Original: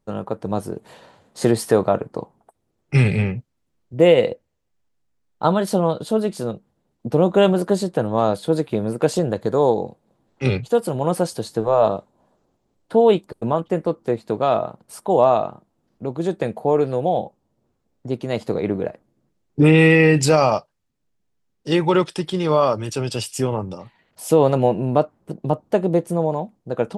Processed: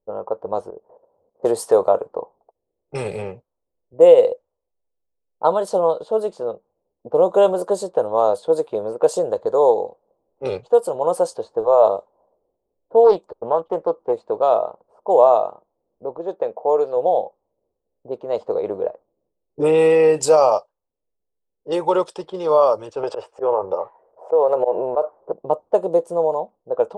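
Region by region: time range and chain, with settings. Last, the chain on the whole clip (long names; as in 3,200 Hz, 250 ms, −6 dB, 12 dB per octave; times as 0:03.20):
0:00.70–0:01.43: Gaussian smoothing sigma 4.1 samples + output level in coarse steps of 12 dB
0:13.04–0:14.13: high-frequency loss of the air 87 metres + highs frequency-modulated by the lows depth 0.27 ms
0:16.18–0:16.97: Butterworth low-pass 7,600 Hz + low-shelf EQ 190 Hz −10 dB + one half of a high-frequency compander decoder only
0:23.03–0:25.33: flat-topped bell 890 Hz +11.5 dB 2.9 octaves + volume swells 108 ms + downward compressor 5 to 1, threshold −16 dBFS
whole clip: low-pass that shuts in the quiet parts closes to 440 Hz, open at −15 dBFS; graphic EQ with 10 bands 125 Hz −11 dB, 250 Hz −8 dB, 500 Hz +12 dB, 1,000 Hz +9 dB, 2,000 Hz −9 dB, 8,000 Hz +8 dB; level −7 dB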